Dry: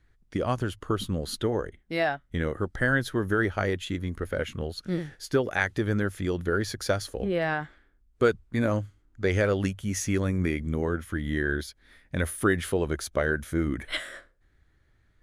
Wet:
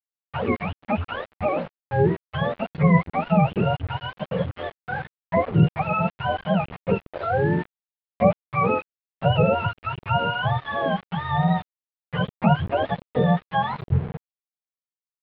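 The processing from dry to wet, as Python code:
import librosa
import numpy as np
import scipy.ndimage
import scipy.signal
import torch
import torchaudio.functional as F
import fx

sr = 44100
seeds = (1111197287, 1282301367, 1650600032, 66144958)

y = fx.octave_mirror(x, sr, pivot_hz=520.0)
y = np.where(np.abs(y) >= 10.0 ** (-36.0 / 20.0), y, 0.0)
y = scipy.signal.sosfilt(scipy.signal.bessel(8, 2000.0, 'lowpass', norm='mag', fs=sr, output='sos'), y)
y = y * librosa.db_to_amplitude(6.5)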